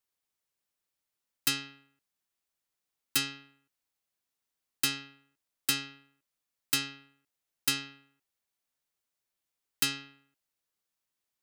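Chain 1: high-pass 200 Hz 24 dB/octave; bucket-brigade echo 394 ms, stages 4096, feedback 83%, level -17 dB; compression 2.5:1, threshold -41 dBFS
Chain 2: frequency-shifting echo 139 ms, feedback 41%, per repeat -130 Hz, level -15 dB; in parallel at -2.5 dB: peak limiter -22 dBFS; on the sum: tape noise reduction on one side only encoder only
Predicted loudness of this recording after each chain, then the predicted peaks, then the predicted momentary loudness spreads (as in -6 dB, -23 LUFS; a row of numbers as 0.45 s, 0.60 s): -43.0 LUFS, -29.0 LUFS; -20.0 dBFS, -7.0 dBFS; 20 LU, 18 LU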